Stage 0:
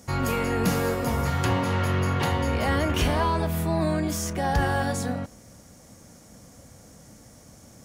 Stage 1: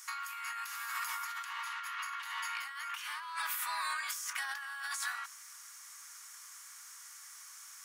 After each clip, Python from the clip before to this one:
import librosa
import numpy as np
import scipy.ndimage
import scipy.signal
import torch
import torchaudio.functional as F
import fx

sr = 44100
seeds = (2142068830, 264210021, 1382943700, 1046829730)

y = scipy.signal.sosfilt(scipy.signal.butter(8, 1100.0, 'highpass', fs=sr, output='sos'), x)
y = fx.peak_eq(y, sr, hz=4100.0, db=-3.5, octaves=1.9)
y = fx.over_compress(y, sr, threshold_db=-41.0, ratio=-1.0)
y = y * 10.0 ** (1.0 / 20.0)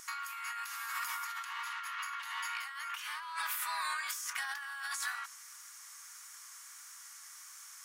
y = fx.wow_flutter(x, sr, seeds[0], rate_hz=2.1, depth_cents=15.0)